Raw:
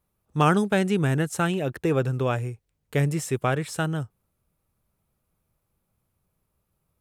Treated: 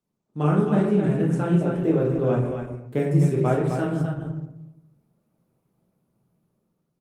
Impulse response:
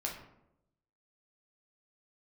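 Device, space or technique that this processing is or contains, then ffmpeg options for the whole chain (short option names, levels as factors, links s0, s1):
far-field microphone of a smart speaker: -filter_complex "[0:a]tiltshelf=f=740:g=8,aecho=1:1:40.82|259.5:0.447|0.501[s0];[1:a]atrim=start_sample=2205[s1];[s0][s1]afir=irnorm=-1:irlink=0,highpass=f=150:w=0.5412,highpass=f=150:w=1.3066,dynaudnorm=f=140:g=11:m=2.99,volume=0.447" -ar 48000 -c:a libopus -b:a 20k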